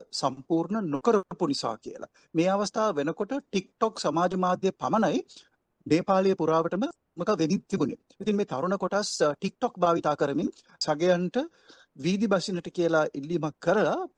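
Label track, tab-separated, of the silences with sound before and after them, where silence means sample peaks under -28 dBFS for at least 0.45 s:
5.200000	5.870000	silence
11.430000	12.050000	silence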